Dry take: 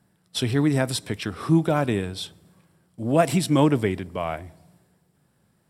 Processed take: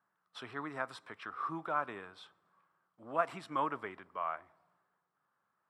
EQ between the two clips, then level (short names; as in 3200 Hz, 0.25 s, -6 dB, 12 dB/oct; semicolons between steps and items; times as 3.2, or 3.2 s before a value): band-pass 1200 Hz, Q 4; 0.0 dB